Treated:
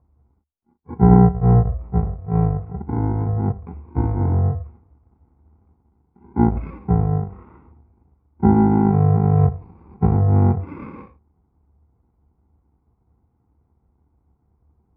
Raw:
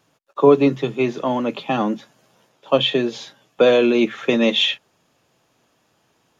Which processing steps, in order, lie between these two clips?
bit-reversed sample order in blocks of 32 samples; low-pass 2.4 kHz 24 dB/octave; bass shelf 160 Hz +4 dB; speed mistake 78 rpm record played at 33 rpm; peaking EQ 74 Hz +13.5 dB 0.36 oct

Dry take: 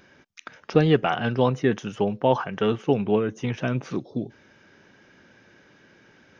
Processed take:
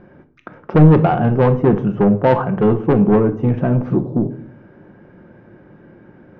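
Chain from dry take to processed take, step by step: low-pass 1 kHz 12 dB/octave; bass shelf 350 Hz +5.5 dB; saturation -16.5 dBFS, distortion -10 dB; simulated room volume 610 m³, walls furnished, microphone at 0.89 m; trim +9 dB

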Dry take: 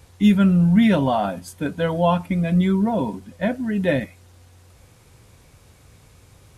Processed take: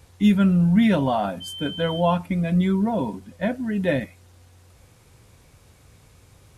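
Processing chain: 1.40–1.99 s: whistle 3.1 kHz -31 dBFS; trim -2 dB

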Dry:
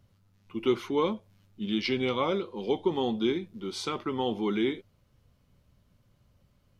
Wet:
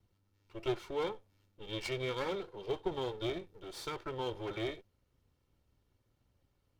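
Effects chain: comb filter that takes the minimum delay 2.2 ms; trim -8 dB

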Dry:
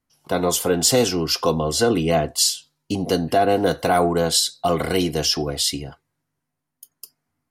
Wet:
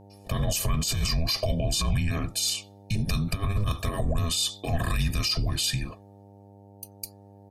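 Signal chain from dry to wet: frequency shift -410 Hz; compressor with a negative ratio -20 dBFS, ratio -0.5; peak limiter -18 dBFS, peak gain reduction 10.5 dB; comb 1.7 ms, depth 79%; mains buzz 100 Hz, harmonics 9, -49 dBFS -4 dB/octave; trim -1.5 dB

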